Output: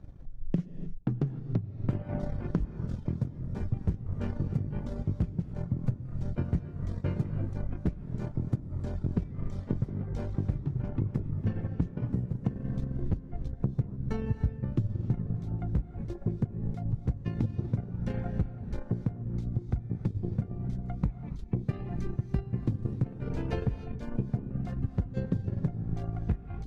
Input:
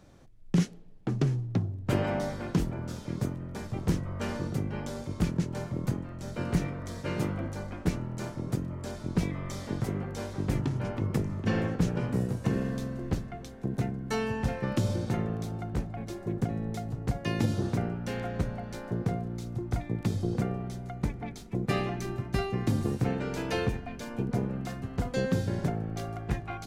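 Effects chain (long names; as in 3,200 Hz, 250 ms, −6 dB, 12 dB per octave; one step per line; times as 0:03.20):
RIAA equalisation playback
reverb reduction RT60 0.51 s
0:13.23–0:15.37: low-shelf EQ 190 Hz +7 dB
transient designer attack +6 dB, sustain −8 dB
downward compressor 5 to 1, threshold −23 dBFS, peak gain reduction 22 dB
reverb whose tail is shaped and stops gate 330 ms rising, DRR 11 dB
level −4 dB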